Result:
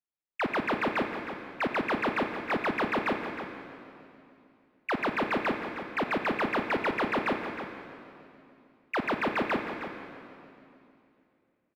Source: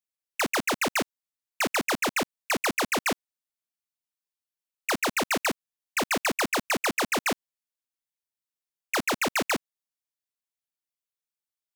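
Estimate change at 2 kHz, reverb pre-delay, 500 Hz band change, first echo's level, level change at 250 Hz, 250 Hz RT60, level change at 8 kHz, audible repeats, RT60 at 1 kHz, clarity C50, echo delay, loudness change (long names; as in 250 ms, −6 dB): −3.0 dB, 36 ms, +0.5 dB, −11.0 dB, +0.5 dB, 3.2 s, below −25 dB, 1, 2.6 s, 5.0 dB, 314 ms, −3.5 dB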